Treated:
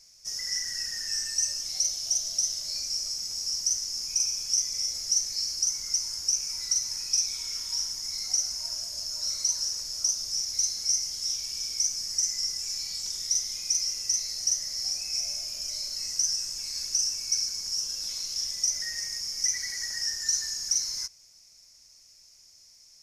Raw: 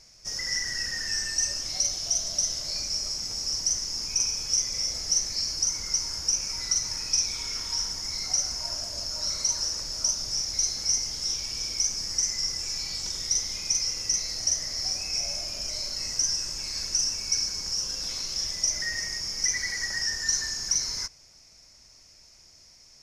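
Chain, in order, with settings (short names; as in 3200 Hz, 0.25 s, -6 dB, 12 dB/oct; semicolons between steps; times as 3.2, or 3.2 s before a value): pre-emphasis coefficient 0.8; gain +2 dB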